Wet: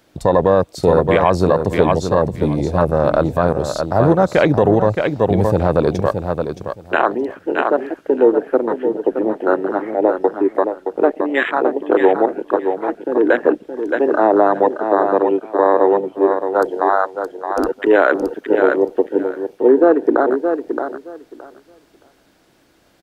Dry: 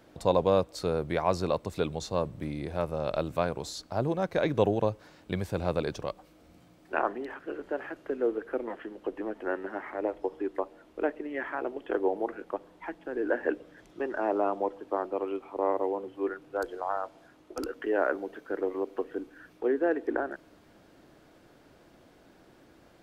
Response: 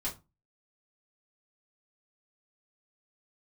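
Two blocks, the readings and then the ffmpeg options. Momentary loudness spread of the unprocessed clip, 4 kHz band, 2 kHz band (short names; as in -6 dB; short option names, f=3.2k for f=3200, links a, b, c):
11 LU, n/a, +14.5 dB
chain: -af "afwtdn=0.02,highshelf=f=2.1k:g=9,aecho=1:1:620|1240|1860:0.398|0.0677|0.0115,alimiter=level_in=17dB:limit=-1dB:release=50:level=0:latency=1,volume=-1dB"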